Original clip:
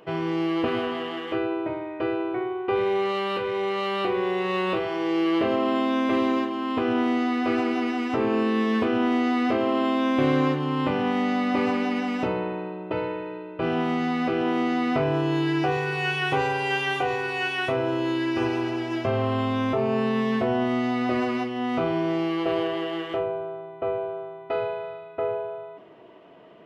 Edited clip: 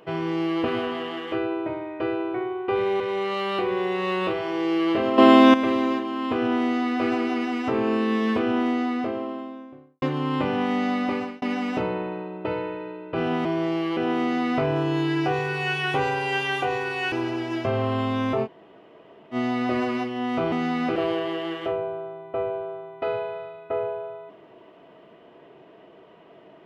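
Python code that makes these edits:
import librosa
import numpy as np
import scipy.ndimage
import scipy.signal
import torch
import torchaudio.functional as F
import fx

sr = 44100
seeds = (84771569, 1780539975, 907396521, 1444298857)

y = fx.studio_fade_out(x, sr, start_s=8.84, length_s=1.64)
y = fx.edit(y, sr, fx.cut(start_s=3.0, length_s=0.46),
    fx.clip_gain(start_s=5.64, length_s=0.36, db=11.0),
    fx.fade_out_span(start_s=11.32, length_s=0.56, curve='qsin'),
    fx.swap(start_s=13.91, length_s=0.44, other_s=21.92, other_length_s=0.52),
    fx.cut(start_s=17.5, length_s=1.02),
    fx.room_tone_fill(start_s=19.85, length_s=0.89, crossfade_s=0.06), tone=tone)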